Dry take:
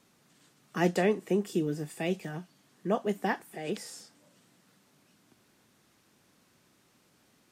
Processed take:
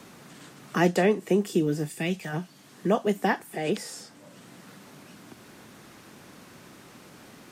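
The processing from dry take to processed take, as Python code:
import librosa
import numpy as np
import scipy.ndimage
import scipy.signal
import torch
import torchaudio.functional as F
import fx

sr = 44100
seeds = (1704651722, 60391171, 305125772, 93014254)

y = fx.peak_eq(x, sr, hz=fx.line((1.87, 1200.0), (2.32, 240.0)), db=-10.5, octaves=2.0, at=(1.87, 2.32), fade=0.02)
y = fx.band_squash(y, sr, depth_pct=40)
y = y * 10.0 ** (6.5 / 20.0)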